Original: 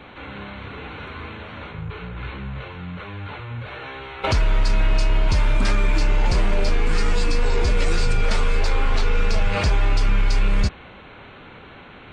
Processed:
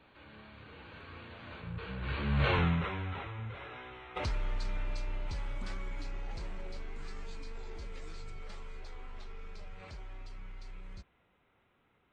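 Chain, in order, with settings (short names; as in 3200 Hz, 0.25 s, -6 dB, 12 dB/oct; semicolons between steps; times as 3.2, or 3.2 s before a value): Doppler pass-by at 2.55, 22 m/s, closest 2.4 m; gain +8.5 dB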